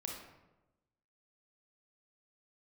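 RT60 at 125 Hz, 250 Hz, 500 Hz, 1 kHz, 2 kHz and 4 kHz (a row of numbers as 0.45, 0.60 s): 1.3, 1.2, 1.1, 0.95, 0.80, 0.60 s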